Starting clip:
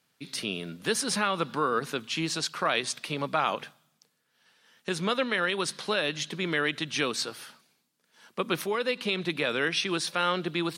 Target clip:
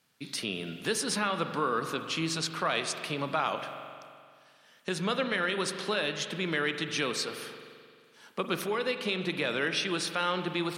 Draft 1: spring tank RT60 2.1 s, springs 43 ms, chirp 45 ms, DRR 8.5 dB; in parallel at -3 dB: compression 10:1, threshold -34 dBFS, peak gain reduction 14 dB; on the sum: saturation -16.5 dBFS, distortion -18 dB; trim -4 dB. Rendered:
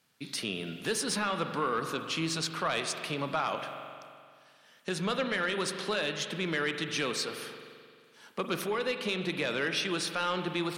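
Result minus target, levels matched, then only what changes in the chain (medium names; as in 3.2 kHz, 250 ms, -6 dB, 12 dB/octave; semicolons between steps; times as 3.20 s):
saturation: distortion +14 dB
change: saturation -7.5 dBFS, distortion -32 dB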